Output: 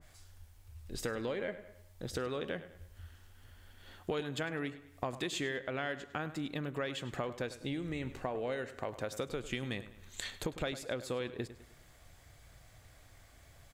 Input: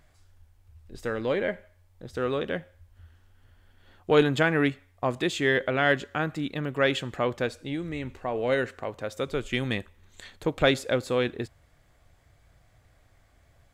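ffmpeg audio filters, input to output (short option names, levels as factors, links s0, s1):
-filter_complex "[0:a]acompressor=threshold=0.0178:ratio=12,highshelf=f=2900:g=8.5,asplit=2[s0][s1];[s1]adelay=102,lowpass=f=4800:p=1,volume=0.2,asplit=2[s2][s3];[s3]adelay=102,lowpass=f=4800:p=1,volume=0.43,asplit=2[s4][s5];[s5]adelay=102,lowpass=f=4800:p=1,volume=0.43,asplit=2[s6][s7];[s7]adelay=102,lowpass=f=4800:p=1,volume=0.43[s8];[s2][s4][s6][s8]amix=inputs=4:normalize=0[s9];[s0][s9]amix=inputs=2:normalize=0,adynamicequalizer=threshold=0.002:dfrequency=1600:dqfactor=0.7:tfrequency=1600:tqfactor=0.7:attack=5:release=100:ratio=0.375:range=2:mode=cutabove:tftype=highshelf,volume=1.12"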